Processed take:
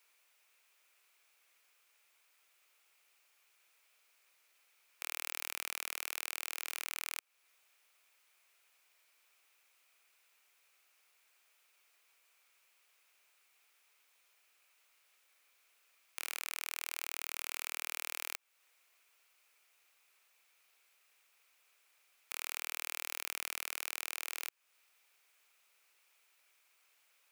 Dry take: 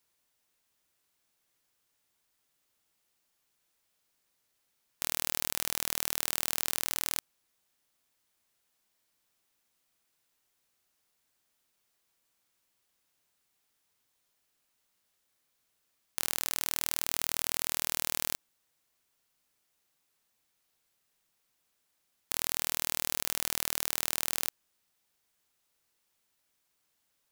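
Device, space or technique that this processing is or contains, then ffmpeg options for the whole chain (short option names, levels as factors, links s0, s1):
laptop speaker: -af "highpass=f=410:w=0.5412,highpass=f=410:w=1.3066,equalizer=f=1300:t=o:w=0.47:g=5,equalizer=f=2400:t=o:w=0.5:g=11,alimiter=limit=0.15:level=0:latency=1:release=297,volume=1.5"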